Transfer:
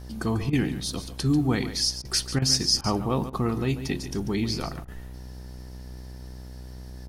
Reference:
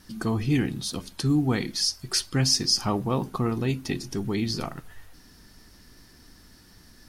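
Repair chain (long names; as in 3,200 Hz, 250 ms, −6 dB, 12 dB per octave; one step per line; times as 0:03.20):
hum removal 62.8 Hz, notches 16
repair the gap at 0:00.50/0:02.02/0:02.39/0:02.81/0:03.30/0:04.85, 28 ms
echo removal 142 ms −12 dB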